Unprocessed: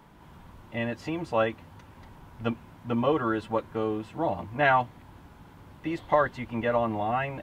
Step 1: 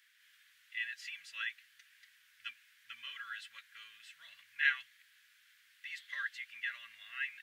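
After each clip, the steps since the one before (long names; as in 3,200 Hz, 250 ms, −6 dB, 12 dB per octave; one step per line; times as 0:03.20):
elliptic high-pass filter 1,700 Hz, stop band 50 dB
level −1 dB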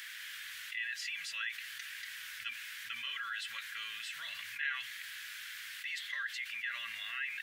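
envelope flattener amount 70%
level −8 dB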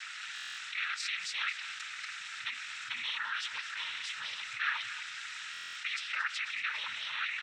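cochlear-implant simulation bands 12
single-tap delay 228 ms −13.5 dB
buffer that repeats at 0:00.34/0:05.52, samples 1,024, times 9
level +4 dB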